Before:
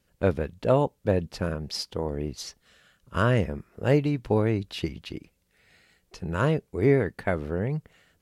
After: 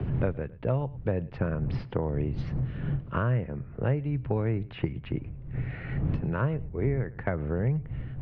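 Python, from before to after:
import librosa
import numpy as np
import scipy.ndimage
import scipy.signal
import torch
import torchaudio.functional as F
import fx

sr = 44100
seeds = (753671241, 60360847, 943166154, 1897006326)

y = fx.dmg_wind(x, sr, seeds[0], corner_hz=94.0, level_db=-36.0)
y = scipy.signal.sosfilt(scipy.signal.butter(4, 2500.0, 'lowpass', fs=sr, output='sos'), y)
y = fx.peak_eq(y, sr, hz=130.0, db=11.0, octaves=0.4)
y = fx.rider(y, sr, range_db=4, speed_s=0.5)
y = y + 10.0 ** (-23.5 / 20.0) * np.pad(y, (int(107 * sr / 1000.0), 0))[:len(y)]
y = fx.band_squash(y, sr, depth_pct=100)
y = y * librosa.db_to_amplitude(-6.5)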